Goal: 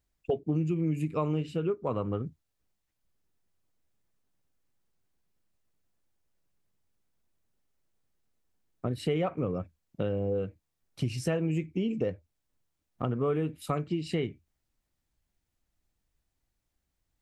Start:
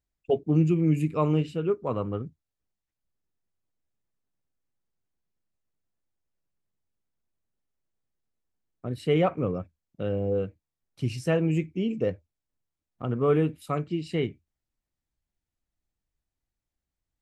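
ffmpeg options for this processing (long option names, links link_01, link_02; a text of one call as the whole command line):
ffmpeg -i in.wav -af "acompressor=threshold=-34dB:ratio=4,volume=6dB" out.wav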